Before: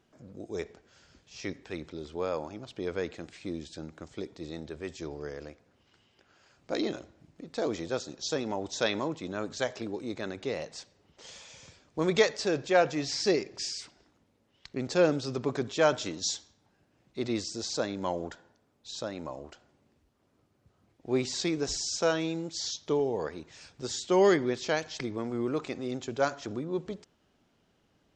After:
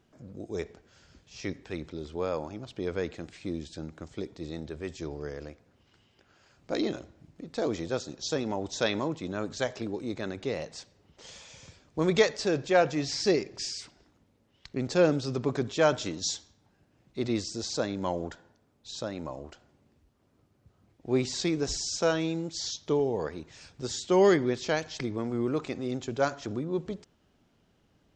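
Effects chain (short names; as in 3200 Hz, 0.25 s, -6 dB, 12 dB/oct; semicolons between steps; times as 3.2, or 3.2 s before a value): low shelf 200 Hz +6 dB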